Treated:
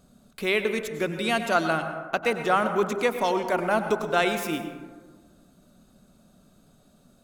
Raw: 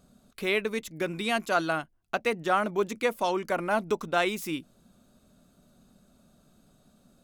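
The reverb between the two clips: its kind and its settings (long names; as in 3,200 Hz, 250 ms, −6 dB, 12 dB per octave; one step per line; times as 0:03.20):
dense smooth reverb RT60 1.5 s, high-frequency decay 0.35×, pre-delay 85 ms, DRR 7.5 dB
level +2.5 dB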